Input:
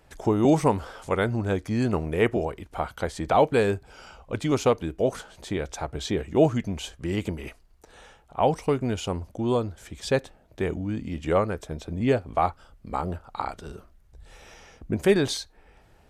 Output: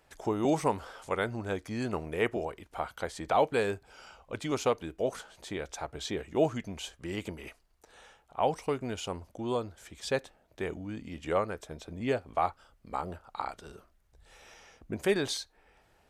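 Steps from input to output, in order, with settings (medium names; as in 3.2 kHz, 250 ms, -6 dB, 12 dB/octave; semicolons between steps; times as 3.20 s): bass shelf 320 Hz -8.5 dB; trim -4 dB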